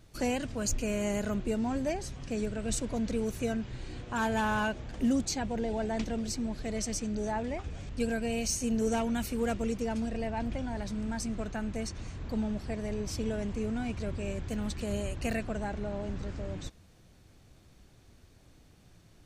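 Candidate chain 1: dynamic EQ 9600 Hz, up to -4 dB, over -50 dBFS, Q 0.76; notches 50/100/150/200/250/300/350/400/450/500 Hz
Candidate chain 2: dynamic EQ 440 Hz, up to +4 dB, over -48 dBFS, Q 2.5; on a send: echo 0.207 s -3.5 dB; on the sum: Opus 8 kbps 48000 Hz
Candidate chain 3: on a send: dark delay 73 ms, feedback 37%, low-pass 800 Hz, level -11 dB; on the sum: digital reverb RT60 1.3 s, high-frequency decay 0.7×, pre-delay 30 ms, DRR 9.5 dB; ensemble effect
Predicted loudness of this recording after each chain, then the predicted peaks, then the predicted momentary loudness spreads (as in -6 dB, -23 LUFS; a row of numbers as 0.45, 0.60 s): -34.0, -32.5, -35.0 LUFS; -19.0, -15.0, -18.5 dBFS; 8, 7, 7 LU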